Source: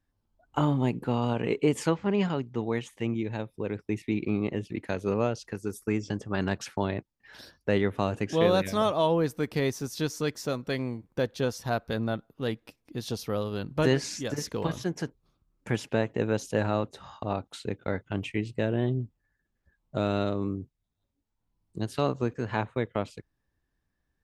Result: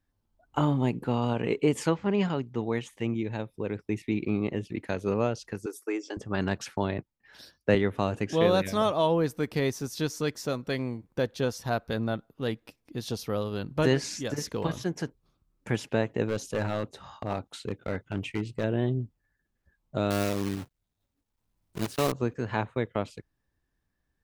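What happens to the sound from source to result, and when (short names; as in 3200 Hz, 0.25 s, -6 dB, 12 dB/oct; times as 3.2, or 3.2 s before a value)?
5.66–6.17 elliptic high-pass 310 Hz, stop band 50 dB
6.98–7.75 three-band expander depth 40%
16.25–18.64 overloaded stage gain 23 dB
20.1–22.13 block floating point 3-bit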